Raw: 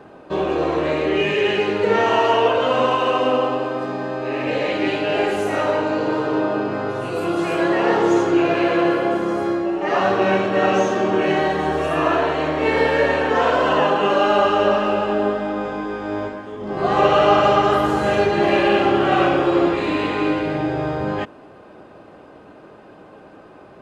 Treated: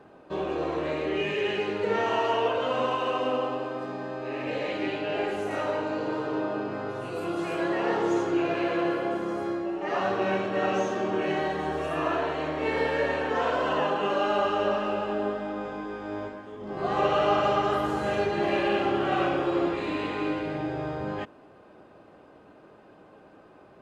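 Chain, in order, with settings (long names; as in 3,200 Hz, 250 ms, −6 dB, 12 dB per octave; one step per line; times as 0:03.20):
0:04.86–0:05.51: high-shelf EQ 6,600 Hz −7 dB
level −9 dB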